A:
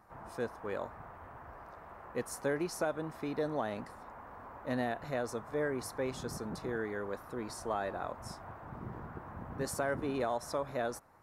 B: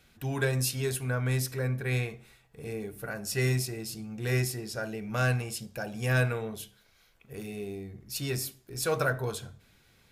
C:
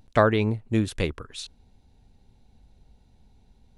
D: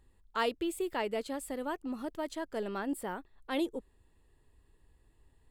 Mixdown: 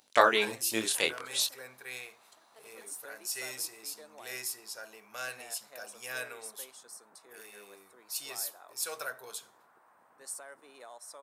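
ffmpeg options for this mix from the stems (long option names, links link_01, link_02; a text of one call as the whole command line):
ffmpeg -i stem1.wav -i stem2.wav -i stem3.wav -i stem4.wav -filter_complex "[0:a]equalizer=frequency=8600:width_type=o:width=0.27:gain=10,adelay=600,volume=-14.5dB[link_01];[1:a]agate=range=-33dB:threshold=-49dB:ratio=3:detection=peak,volume=-10.5dB[link_02];[2:a]flanger=delay=20:depth=6.9:speed=0.61,volume=2.5dB,asplit=2[link_03][link_04];[3:a]volume=-17.5dB[link_05];[link_04]apad=whole_len=242866[link_06];[link_05][link_06]sidechaingate=range=-33dB:threshold=-53dB:ratio=16:detection=peak[link_07];[link_01][link_02][link_03][link_07]amix=inputs=4:normalize=0,highpass=560,highshelf=frequency=3400:gain=12" out.wav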